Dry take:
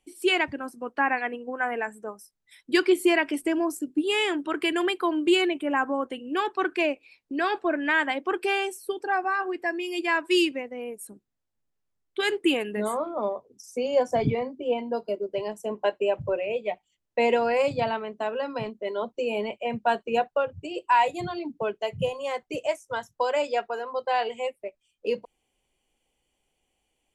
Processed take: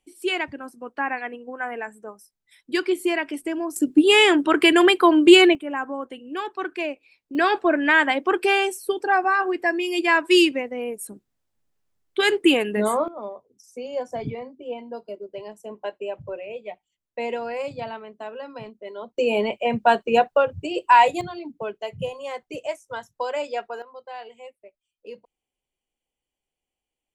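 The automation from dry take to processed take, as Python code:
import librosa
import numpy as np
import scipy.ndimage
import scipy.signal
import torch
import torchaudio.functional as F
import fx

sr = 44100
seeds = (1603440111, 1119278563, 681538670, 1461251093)

y = fx.gain(x, sr, db=fx.steps((0.0, -2.0), (3.76, 10.0), (5.55, -3.0), (7.35, 6.0), (13.08, -6.0), (19.18, 6.5), (21.21, -2.0), (23.82, -12.0)))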